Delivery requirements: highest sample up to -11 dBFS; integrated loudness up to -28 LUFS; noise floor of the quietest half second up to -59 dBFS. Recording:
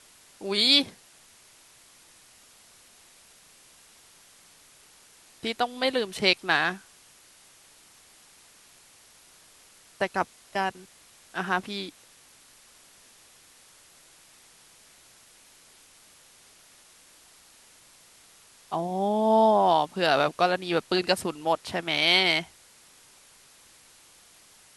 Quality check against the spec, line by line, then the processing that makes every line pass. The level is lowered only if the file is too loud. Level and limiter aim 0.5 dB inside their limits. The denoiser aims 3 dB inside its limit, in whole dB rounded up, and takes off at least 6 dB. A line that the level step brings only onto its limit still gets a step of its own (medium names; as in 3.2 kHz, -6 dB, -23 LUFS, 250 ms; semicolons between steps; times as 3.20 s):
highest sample -6.0 dBFS: fail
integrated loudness -25.0 LUFS: fail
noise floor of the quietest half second -56 dBFS: fail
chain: trim -3.5 dB; peak limiter -11.5 dBFS